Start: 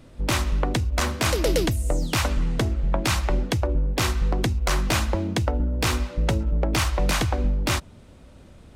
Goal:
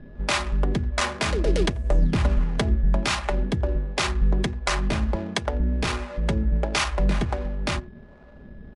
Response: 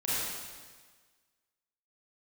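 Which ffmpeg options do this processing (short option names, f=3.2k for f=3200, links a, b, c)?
-filter_complex "[0:a]asplit=2[a][b];[b]adelay=87.46,volume=-22dB,highshelf=f=4k:g=-1.97[c];[a][c]amix=inputs=2:normalize=0,asplit=2[d][e];[e]acompressor=threshold=-33dB:ratio=6,volume=1.5dB[f];[d][f]amix=inputs=2:normalize=0,acrossover=split=470[g][h];[g]aeval=exprs='val(0)*(1-0.7/2+0.7/2*cos(2*PI*1.4*n/s))':c=same[i];[h]aeval=exprs='val(0)*(1-0.7/2-0.7/2*cos(2*PI*1.4*n/s))':c=same[j];[i][j]amix=inputs=2:normalize=0,aeval=exprs='val(0)+0.00398*sin(2*PI*1700*n/s)':c=same,aecho=1:1:4.9:0.5,bandreject=f=120.4:t=h:w=4,bandreject=f=240.8:t=h:w=4,bandreject=f=361.2:t=h:w=4,bandreject=f=481.6:t=h:w=4,adynamicsmooth=sensitivity=7:basefreq=660,asettb=1/sr,asplit=3[k][l][m];[k]atrim=end=1.604[n];[l]atrim=start=1.6:end=2.77,asetpts=PTS-STARTPTS,afade=t=in:d=0.004:c=qsin,afade=t=out:st=1.166:d=0.004:c=qsin,lowshelf=f=250:g=6[o];[m]atrim=start=2.766[p];[n][o]acrossfade=d=0.004:c1=hsin:c2=qsin[q];[q][p]acrossfade=d=0.004:c1=qsin:c2=hsin" -ar 24000 -c:a libmp3lame -b:a 80k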